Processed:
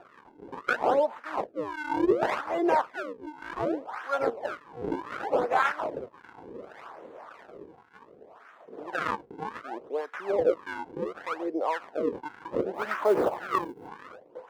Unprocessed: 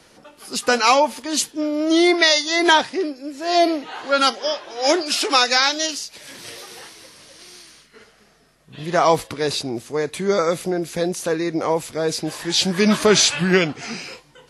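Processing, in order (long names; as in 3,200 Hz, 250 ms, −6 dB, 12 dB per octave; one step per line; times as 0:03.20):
high-pass filter 240 Hz 24 dB per octave
in parallel at −2 dB: upward compression, threshold −19 dBFS
on the sum: sample-and-hold swept by an LFO 41×, swing 160% 0.67 Hz
LFO wah 1.8 Hz 430–1,500 Hz, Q 3
0:12.74–0:13.88: floating-point word with a short mantissa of 4 bits
level −5.5 dB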